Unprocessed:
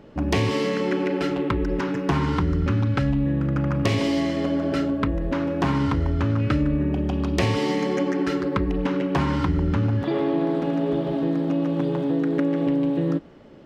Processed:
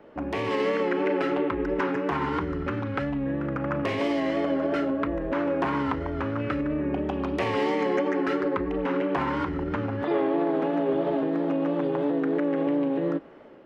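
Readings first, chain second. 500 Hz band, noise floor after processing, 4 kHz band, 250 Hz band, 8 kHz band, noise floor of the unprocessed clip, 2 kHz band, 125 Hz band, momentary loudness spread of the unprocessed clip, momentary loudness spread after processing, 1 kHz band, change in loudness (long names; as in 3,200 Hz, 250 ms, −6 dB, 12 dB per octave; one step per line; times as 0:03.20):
0.0 dB, −32 dBFS, −6.5 dB, −4.0 dB, can't be measured, −28 dBFS, −0.5 dB, −11.5 dB, 2 LU, 4 LU, +0.5 dB, −3.5 dB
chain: pitch vibrato 3 Hz 49 cents
brickwall limiter −16.5 dBFS, peak gain reduction 7.5 dB
three-way crossover with the lows and the highs turned down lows −14 dB, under 300 Hz, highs −20 dB, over 2,500 Hz
automatic gain control gain up to 3 dB
high-shelf EQ 4,600 Hz +9 dB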